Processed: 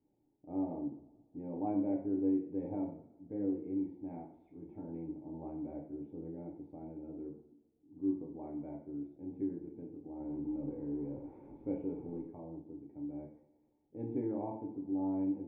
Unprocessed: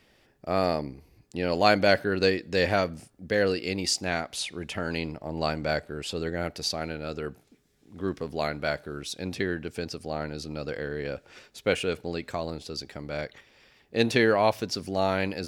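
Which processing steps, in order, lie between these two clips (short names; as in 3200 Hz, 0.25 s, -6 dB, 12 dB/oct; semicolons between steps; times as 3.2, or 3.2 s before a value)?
10.2–12.22 zero-crossing step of -30 dBFS; vocal tract filter u; two-slope reverb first 0.53 s, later 1.6 s, DRR -1 dB; gain -6 dB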